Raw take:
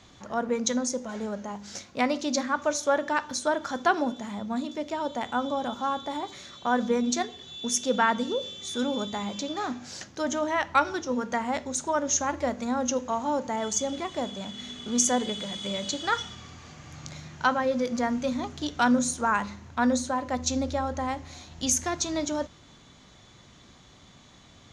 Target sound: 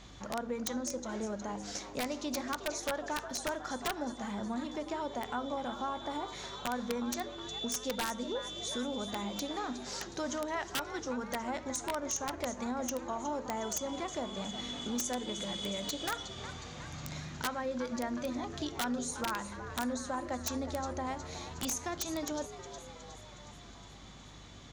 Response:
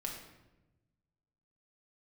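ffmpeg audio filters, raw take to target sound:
-filter_complex "[0:a]acompressor=threshold=-36dB:ratio=3,asplit=2[a][b];[b]asplit=7[c][d][e][f][g][h][i];[c]adelay=364,afreqshift=97,volume=-12dB[j];[d]adelay=728,afreqshift=194,volume=-16.4dB[k];[e]adelay=1092,afreqshift=291,volume=-20.9dB[l];[f]adelay=1456,afreqshift=388,volume=-25.3dB[m];[g]adelay=1820,afreqshift=485,volume=-29.7dB[n];[h]adelay=2184,afreqshift=582,volume=-34.2dB[o];[i]adelay=2548,afreqshift=679,volume=-38.6dB[p];[j][k][l][m][n][o][p]amix=inputs=7:normalize=0[q];[a][q]amix=inputs=2:normalize=0,aeval=exprs='val(0)+0.00158*(sin(2*PI*50*n/s)+sin(2*PI*2*50*n/s)/2+sin(2*PI*3*50*n/s)/3+sin(2*PI*4*50*n/s)/4+sin(2*PI*5*50*n/s)/5)':c=same,aeval=exprs='(mod(17.8*val(0)+1,2)-1)/17.8':c=same"

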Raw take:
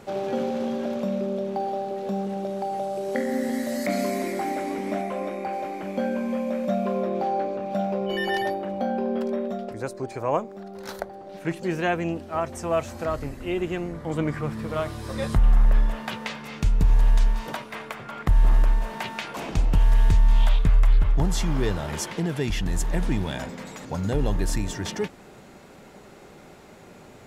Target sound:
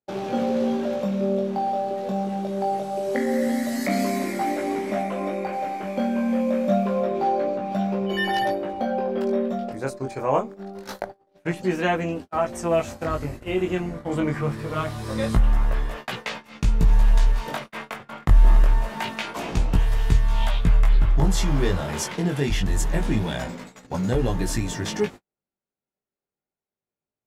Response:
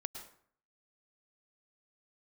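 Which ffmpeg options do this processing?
-af "flanger=delay=16:depth=6:speed=0.25,agate=range=-49dB:threshold=-39dB:ratio=16:detection=peak,volume=5.5dB"

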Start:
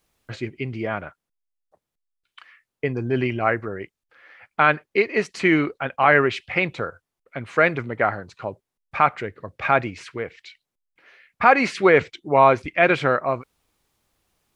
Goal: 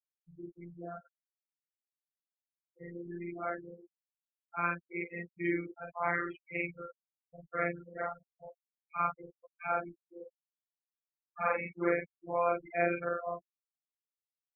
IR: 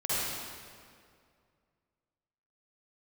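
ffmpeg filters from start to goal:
-filter_complex "[0:a]afftfilt=real='re':imag='-im':win_size=4096:overlap=0.75,acrossover=split=190[a][b];[a]alimiter=level_in=11dB:limit=-24dB:level=0:latency=1,volume=-11dB[c];[c][b]amix=inputs=2:normalize=0,afftfilt=real='re*gte(hypot(re,im),0.0794)':imag='im*gte(hypot(re,im),0.0794)':win_size=1024:overlap=0.75,afftfilt=real='hypot(re,im)*cos(PI*b)':imag='0':win_size=1024:overlap=0.75,volume=-7dB"

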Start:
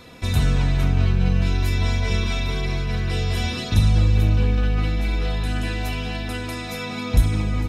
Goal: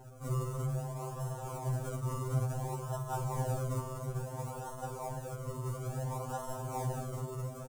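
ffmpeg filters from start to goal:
-filter_complex "[0:a]asuperstop=centerf=1000:order=4:qfactor=0.59,acrusher=bits=7:mode=log:mix=0:aa=0.000001,acrossover=split=400[a][b];[a]acompressor=threshold=-45dB:ratio=2[c];[c][b]amix=inputs=2:normalize=0,asoftclip=type=hard:threshold=-23.5dB,lowshelf=f=170:g=-11,aecho=1:1:204:0.282,acrusher=samples=37:mix=1:aa=0.000001:lfo=1:lforange=37:lforate=0.58,equalizer=f=125:t=o:w=1:g=12,equalizer=f=250:t=o:w=1:g=-9,equalizer=f=500:t=o:w=1:g=3,equalizer=f=1k:t=o:w=1:g=8,equalizer=f=2k:t=o:w=1:g=-11,equalizer=f=4k:t=o:w=1:g=-11,equalizer=f=8k:t=o:w=1:g=8,afftfilt=real='re*2.45*eq(mod(b,6),0)':imag='im*2.45*eq(mod(b,6),0)':win_size=2048:overlap=0.75,volume=-3dB"

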